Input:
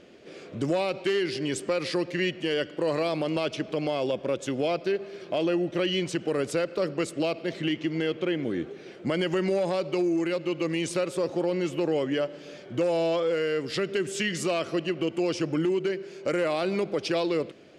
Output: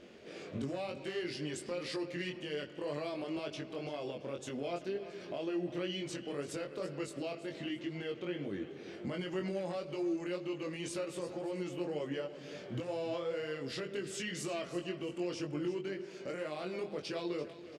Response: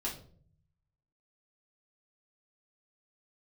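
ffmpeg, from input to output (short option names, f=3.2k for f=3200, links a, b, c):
-filter_complex "[0:a]alimiter=level_in=4dB:limit=-24dB:level=0:latency=1:release=337,volume=-4dB,flanger=delay=20:depth=2.9:speed=2,aecho=1:1:337|674|1011:0.2|0.0678|0.0231,asplit=2[a][b];[1:a]atrim=start_sample=2205[c];[b][c]afir=irnorm=-1:irlink=0,volume=-18dB[d];[a][d]amix=inputs=2:normalize=0"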